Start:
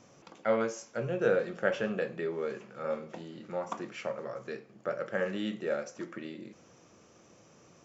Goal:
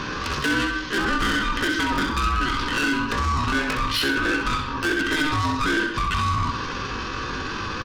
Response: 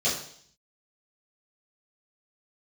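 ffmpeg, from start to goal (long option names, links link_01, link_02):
-filter_complex "[0:a]aresample=8000,aresample=44100,acrossover=split=2700[link_01][link_02];[link_02]acompressor=threshold=-60dB:ratio=4:attack=1:release=60[link_03];[link_01][link_03]amix=inputs=2:normalize=0,aecho=1:1:3.2:0.71,acompressor=threshold=-43dB:ratio=5,apsyclip=34dB,asoftclip=type=tanh:threshold=-16.5dB,highpass=frequency=170:poles=1,asetrate=72056,aresample=44100,atempo=0.612027,bandreject=frequency=1500:width=5.6,aeval=exprs='val(0)*sin(2*PI*610*n/s)':channel_layout=same,aecho=1:1:65|130|195|260:0.422|0.143|0.0487|0.0166"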